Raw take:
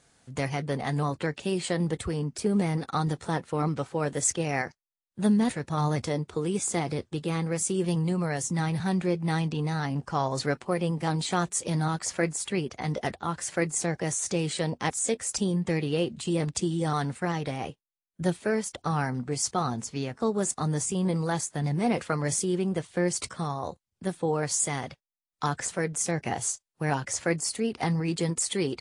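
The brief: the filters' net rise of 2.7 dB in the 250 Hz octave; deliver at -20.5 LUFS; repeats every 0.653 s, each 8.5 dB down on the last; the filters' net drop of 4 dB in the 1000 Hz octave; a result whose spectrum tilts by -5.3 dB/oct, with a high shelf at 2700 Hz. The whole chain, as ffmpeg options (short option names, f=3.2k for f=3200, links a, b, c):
-af "equalizer=f=250:t=o:g=4.5,equalizer=f=1k:t=o:g=-5.5,highshelf=f=2.7k:g=-3.5,aecho=1:1:653|1306|1959|2612:0.376|0.143|0.0543|0.0206,volume=7dB"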